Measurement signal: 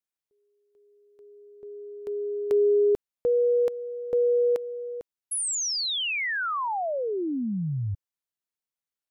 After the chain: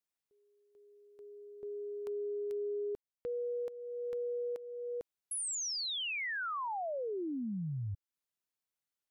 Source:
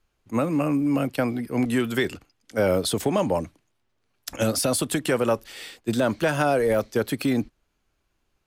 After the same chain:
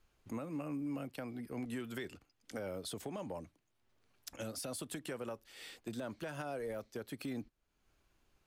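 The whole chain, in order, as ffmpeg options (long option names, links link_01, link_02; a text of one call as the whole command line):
ffmpeg -i in.wav -af "acompressor=threshold=-34dB:ratio=10:attack=0.52:release=452:knee=1:detection=rms,volume=-1dB" out.wav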